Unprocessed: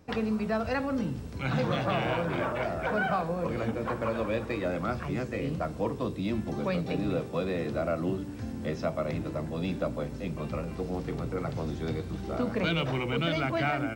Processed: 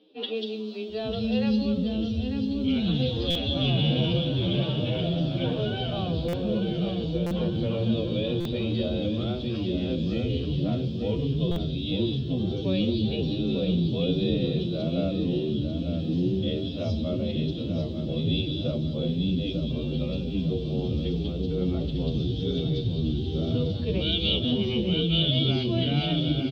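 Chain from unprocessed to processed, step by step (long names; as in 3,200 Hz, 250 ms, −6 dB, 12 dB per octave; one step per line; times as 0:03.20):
drawn EQ curve 380 Hz 0 dB, 1,100 Hz −23 dB, 2,100 Hz −20 dB, 3,300 Hz +13 dB, 8,200 Hz −24 dB
in parallel at −3 dB: brickwall limiter −25.5 dBFS, peak gain reduction 11 dB
on the sum: three-band delay without the direct sound mids, highs, lows 100/470 ms, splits 310/3,800 Hz
phase-vocoder stretch with locked phases 1.9×
on a send: repeating echo 895 ms, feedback 43%, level −8 dB
on the sum: buffer that repeats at 0:03.30/0:06.28/0:07.26/0:08.40/0:11.51, samples 256, times 8
level +3.5 dB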